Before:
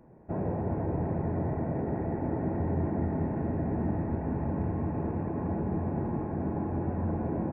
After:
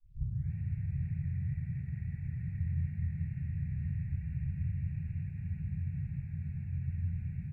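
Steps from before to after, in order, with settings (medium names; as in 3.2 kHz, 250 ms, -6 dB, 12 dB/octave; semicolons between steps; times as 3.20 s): tape start-up on the opening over 0.53 s; elliptic band-stop 140–2200 Hz, stop band 40 dB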